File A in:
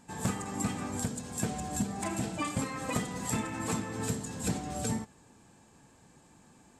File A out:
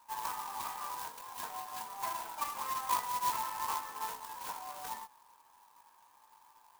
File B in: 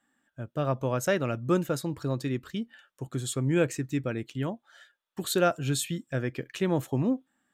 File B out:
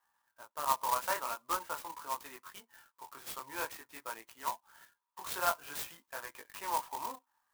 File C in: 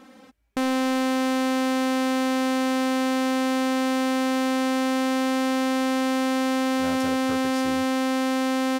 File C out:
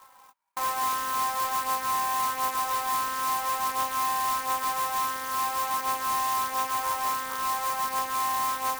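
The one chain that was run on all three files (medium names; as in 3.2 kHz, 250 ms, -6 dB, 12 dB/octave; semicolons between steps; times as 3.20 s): resonant high-pass 970 Hz, resonance Q 11; chorus 0.48 Hz, delay 18 ms, depth 4.4 ms; sampling jitter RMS 0.061 ms; trim -5 dB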